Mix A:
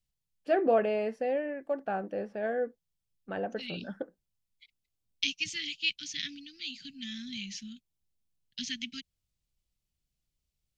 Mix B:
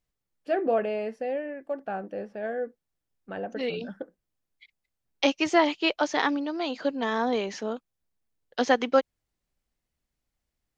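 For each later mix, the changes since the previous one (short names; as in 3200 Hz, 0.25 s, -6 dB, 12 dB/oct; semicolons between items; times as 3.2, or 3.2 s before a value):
second voice: remove inverse Chebyshev band-stop 480–1000 Hz, stop band 70 dB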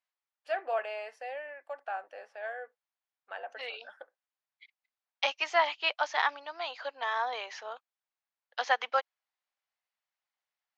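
second voice: add air absorption 130 m; master: add HPF 740 Hz 24 dB/oct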